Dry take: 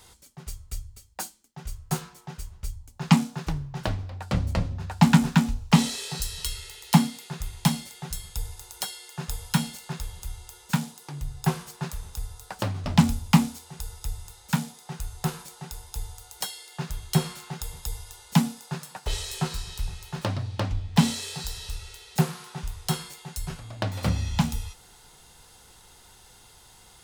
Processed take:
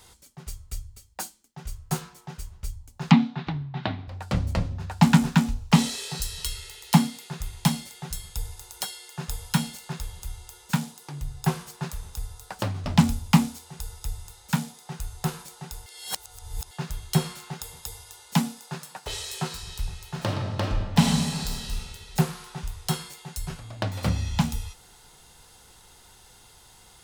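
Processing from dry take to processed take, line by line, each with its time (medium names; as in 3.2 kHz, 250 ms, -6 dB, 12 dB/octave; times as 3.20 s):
3.11–4.08 s: cabinet simulation 130–3800 Hz, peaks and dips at 130 Hz +6 dB, 250 Hz +7 dB, 510 Hz -8 dB, 760 Hz +4 dB, 2.1 kHz +4 dB, 3.8 kHz +7 dB
15.86–16.71 s: reverse
17.54–19.63 s: high-pass 170 Hz 6 dB/octave
20.13–21.81 s: reverb throw, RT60 1.4 s, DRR 1 dB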